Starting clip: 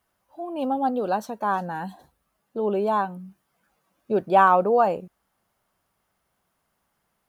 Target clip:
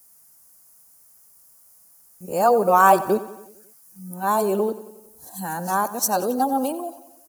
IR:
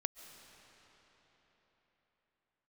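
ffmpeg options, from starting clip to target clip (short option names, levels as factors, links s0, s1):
-af "areverse,aecho=1:1:91|182|273|364|455|546:0.158|0.0919|0.0533|0.0309|0.0179|0.0104,aexciter=amount=14.3:drive=3.7:freq=5100,volume=1.26"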